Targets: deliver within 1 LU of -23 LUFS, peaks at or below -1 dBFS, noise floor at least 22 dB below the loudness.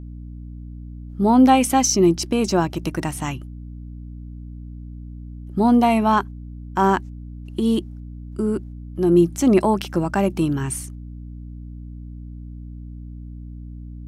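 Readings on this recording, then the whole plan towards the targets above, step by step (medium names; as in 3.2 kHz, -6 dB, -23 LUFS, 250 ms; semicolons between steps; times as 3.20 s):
hum 60 Hz; highest harmonic 300 Hz; hum level -33 dBFS; loudness -19.5 LUFS; peak level -3.5 dBFS; loudness target -23.0 LUFS
-> hum notches 60/120/180/240/300 Hz; trim -3.5 dB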